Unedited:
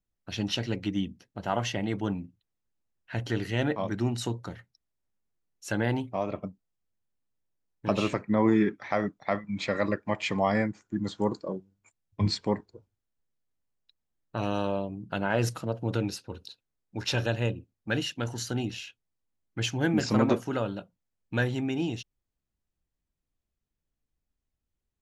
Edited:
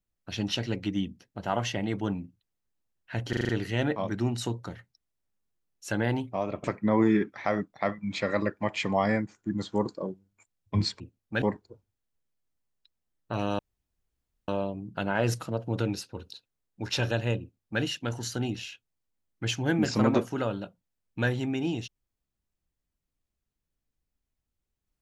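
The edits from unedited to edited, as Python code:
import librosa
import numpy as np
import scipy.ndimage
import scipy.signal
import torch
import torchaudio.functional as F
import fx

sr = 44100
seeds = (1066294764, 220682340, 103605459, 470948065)

y = fx.edit(x, sr, fx.stutter(start_s=3.29, slice_s=0.04, count=6),
    fx.cut(start_s=6.44, length_s=1.66),
    fx.insert_room_tone(at_s=14.63, length_s=0.89),
    fx.duplicate(start_s=17.55, length_s=0.42, to_s=12.46), tone=tone)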